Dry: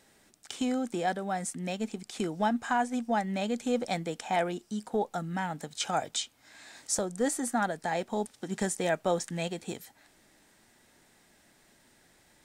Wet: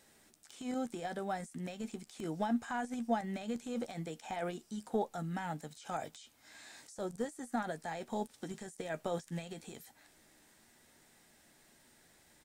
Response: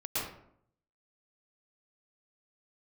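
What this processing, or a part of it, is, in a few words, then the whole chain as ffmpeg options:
de-esser from a sidechain: -filter_complex "[0:a]asplit=2[s0][s1];[s1]highpass=4700,apad=whole_len=548815[s2];[s0][s2]sidechaincompress=threshold=0.00251:ratio=12:attack=2:release=34,highshelf=f=7800:g=5,asplit=2[s3][s4];[s4]adelay=13,volume=0.282[s5];[s3][s5]amix=inputs=2:normalize=0,volume=0.668"

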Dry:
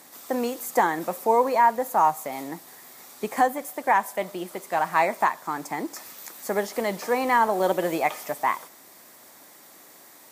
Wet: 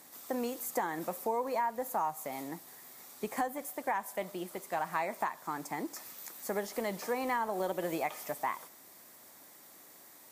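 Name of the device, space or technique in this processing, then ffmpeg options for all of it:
ASMR close-microphone chain: -af "lowshelf=f=130:g=6,acompressor=threshold=0.0794:ratio=4,highshelf=f=8700:g=4,volume=0.422"

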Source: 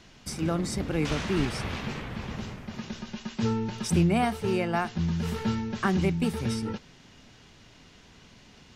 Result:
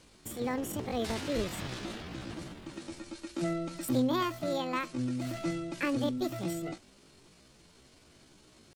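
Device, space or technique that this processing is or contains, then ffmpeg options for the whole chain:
chipmunk voice: -af "asetrate=66075,aresample=44100,atempo=0.66742,volume=0.531"

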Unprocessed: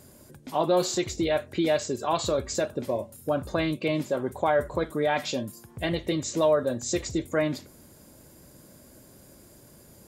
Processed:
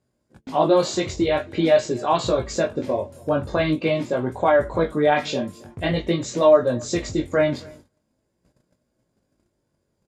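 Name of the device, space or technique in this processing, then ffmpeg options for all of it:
double-tracked vocal: -filter_complex "[0:a]highshelf=f=4500:g=-6,asplit=2[s0][s1];[s1]adelay=23,volume=0.282[s2];[s0][s2]amix=inputs=2:normalize=0,flanger=delay=16.5:depth=4.6:speed=0.46,asplit=2[s3][s4];[s4]adelay=271,lowpass=f=3200:p=1,volume=0.0631,asplit=2[s5][s6];[s6]adelay=271,lowpass=f=3200:p=1,volume=0.25[s7];[s3][s5][s7]amix=inputs=3:normalize=0,agate=range=0.0562:threshold=0.00282:ratio=16:detection=peak,lowpass=7500,volume=2.66"

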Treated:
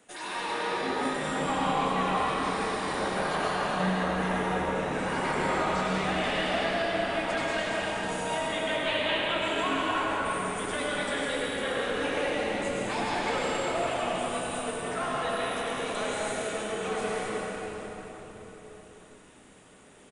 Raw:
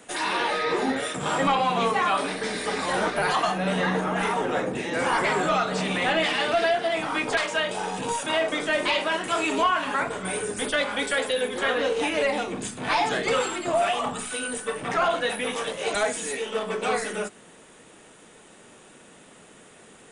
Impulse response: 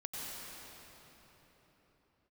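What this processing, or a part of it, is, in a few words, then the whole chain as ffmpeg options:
cathedral: -filter_complex "[0:a]asettb=1/sr,asplit=3[s0][s1][s2];[s0]atrim=end=8.454[s3];[s1]atrim=start=8.45:end=9.42,asetpts=PTS-STARTPTS,afade=t=in:d=0.004:c=qsin,afade=t=out:st=0.966:d=0.004:c=qsin,highshelf=f=4300:t=q:w=3:g=-7[s4];[s2]atrim=start=9.416[s5];[s3][s4]acrossfade=d=0.004:c1=hsin:c2=qsin[s6];[s6][s5]acrossfade=d=0.004:c1=qsin:c2=hsin,asplit=8[s7][s8][s9][s10][s11][s12][s13][s14];[s8]adelay=207,afreqshift=-110,volume=0.237[s15];[s9]adelay=414,afreqshift=-220,volume=0.14[s16];[s10]adelay=621,afreqshift=-330,volume=0.0822[s17];[s11]adelay=828,afreqshift=-440,volume=0.049[s18];[s12]adelay=1035,afreqshift=-550,volume=0.0288[s19];[s13]adelay=1242,afreqshift=-660,volume=0.017[s20];[s14]adelay=1449,afreqshift=-770,volume=0.01[s21];[s7][s15][s16][s17][s18][s19][s20][s21]amix=inputs=8:normalize=0[s22];[1:a]atrim=start_sample=2205[s23];[s22][s23]afir=irnorm=-1:irlink=0,volume=0.501"

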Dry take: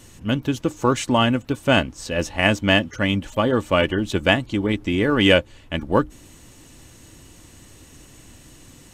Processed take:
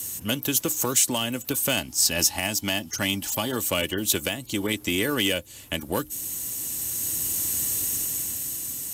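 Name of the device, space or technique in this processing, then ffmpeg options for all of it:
FM broadcast chain: -filter_complex "[0:a]asettb=1/sr,asplit=3[s0][s1][s2];[s0]atrim=end=1.774[s3];[s1]atrim=start=1.77:end=3.56,asetpts=PTS-STARTPTS,afade=t=in:d=0.004:c=qsin,afade=t=out:st=1.786:d=0.004:c=qsin,equalizer=f=500:t=o:w=0.33:g=-11,equalizer=f=800:t=o:w=0.33:g=6,equalizer=f=5000:t=o:w=0.33:g=7[s4];[s2]atrim=start=3.556[s5];[s3][s4]acrossfade=d=0.004:c1=hsin:c2=qsin[s6];[s6][s5]acrossfade=d=0.004:c1=qsin:c2=hsin,highpass=66,dynaudnorm=f=210:g=13:m=3.98,acrossover=split=300|860|2100[s7][s8][s9][s10];[s7]acompressor=threshold=0.0282:ratio=4[s11];[s8]acompressor=threshold=0.0447:ratio=4[s12];[s9]acompressor=threshold=0.0126:ratio=4[s13];[s10]acompressor=threshold=0.0447:ratio=4[s14];[s11][s12][s13][s14]amix=inputs=4:normalize=0,aemphasis=mode=production:type=50fm,alimiter=limit=0.211:level=0:latency=1:release=304,asoftclip=type=hard:threshold=0.158,lowpass=f=15000:w=0.5412,lowpass=f=15000:w=1.3066,aemphasis=mode=production:type=50fm"

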